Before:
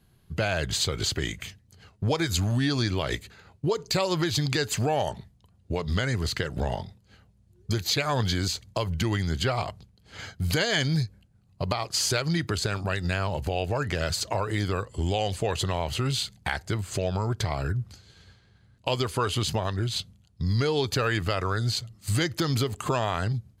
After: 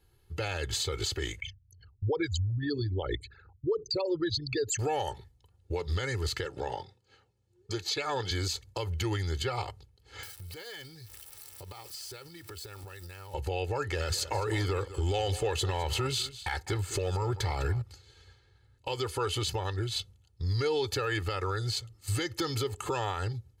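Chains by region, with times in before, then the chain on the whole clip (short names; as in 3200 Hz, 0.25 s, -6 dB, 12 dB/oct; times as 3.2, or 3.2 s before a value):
1.4–4.79 formant sharpening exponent 3 + bell 11000 Hz +7 dB 2.7 oct
6.45–8.31 BPF 150–7900 Hz + notch 2000 Hz, Q 18
10.23–13.34 switching spikes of -26.5 dBFS + notch 6700 Hz, Q 7.6 + compressor 16:1, threshold -36 dBFS
13.93–17.82 sample leveller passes 1 + echo 0.204 s -17 dB
whole clip: bell 150 Hz -8.5 dB 0.38 oct; comb 2.3 ms, depth 82%; limiter -16 dBFS; gain -5.5 dB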